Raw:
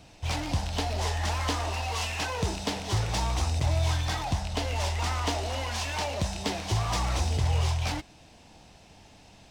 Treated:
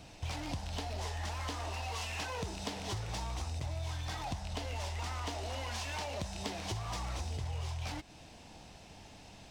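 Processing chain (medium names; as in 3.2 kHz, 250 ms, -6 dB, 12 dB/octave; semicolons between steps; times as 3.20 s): compression 6:1, threshold -36 dBFS, peak gain reduction 14 dB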